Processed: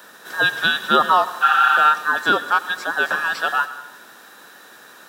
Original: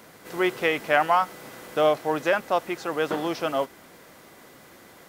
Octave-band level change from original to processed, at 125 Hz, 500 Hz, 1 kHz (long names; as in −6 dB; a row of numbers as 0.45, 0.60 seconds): can't be measured, −4.0 dB, +8.5 dB